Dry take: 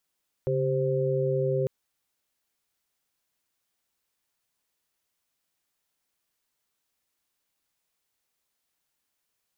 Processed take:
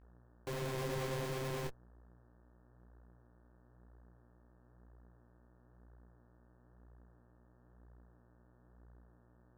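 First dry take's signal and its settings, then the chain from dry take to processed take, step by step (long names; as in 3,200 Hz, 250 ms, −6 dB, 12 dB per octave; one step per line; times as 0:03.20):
held notes C#3/G4/C5 sine, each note −27.5 dBFS 1.20 s
comparator with hysteresis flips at −33.5 dBFS
hum with harmonics 60 Hz, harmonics 30, −59 dBFS −6 dB per octave
micro pitch shift up and down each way 35 cents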